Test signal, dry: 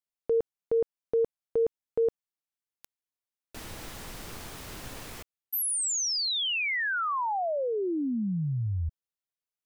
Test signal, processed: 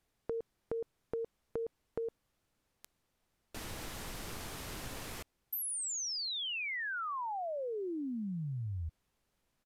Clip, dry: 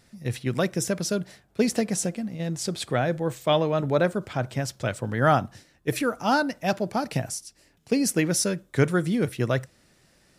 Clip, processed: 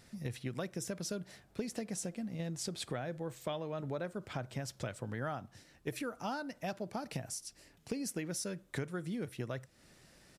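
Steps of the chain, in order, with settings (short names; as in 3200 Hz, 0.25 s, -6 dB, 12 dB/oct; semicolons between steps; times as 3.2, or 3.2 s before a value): compressor 6:1, threshold -36 dBFS; added noise pink -79 dBFS; downsampling 32000 Hz; gain -1 dB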